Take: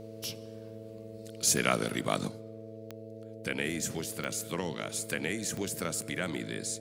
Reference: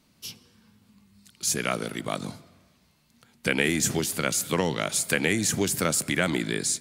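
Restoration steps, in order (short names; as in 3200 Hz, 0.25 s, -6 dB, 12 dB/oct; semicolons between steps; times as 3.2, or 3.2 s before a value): de-click; de-hum 109.8 Hz, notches 6; notch 460 Hz, Q 30; gain 0 dB, from 2.28 s +9.5 dB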